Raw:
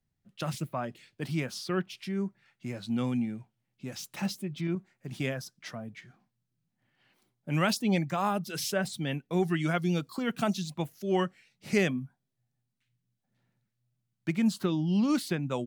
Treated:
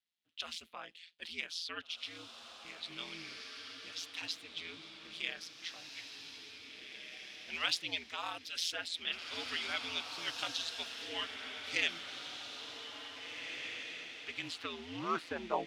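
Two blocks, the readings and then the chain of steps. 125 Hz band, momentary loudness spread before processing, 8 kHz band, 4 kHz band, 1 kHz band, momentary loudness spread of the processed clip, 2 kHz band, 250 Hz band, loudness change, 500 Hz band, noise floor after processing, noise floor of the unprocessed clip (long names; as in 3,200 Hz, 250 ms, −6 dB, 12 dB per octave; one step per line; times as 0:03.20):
−27.0 dB, 14 LU, −5.5 dB, +4.0 dB, −7.0 dB, 12 LU, −1.5 dB, −21.5 dB, −8.5 dB, −13.5 dB, −57 dBFS, −82 dBFS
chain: ring modulation 84 Hz
band-pass filter sweep 3,400 Hz → 850 Hz, 0:14.37–0:15.46
feedback delay with all-pass diffusion 1,901 ms, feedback 41%, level −5 dB
level +8.5 dB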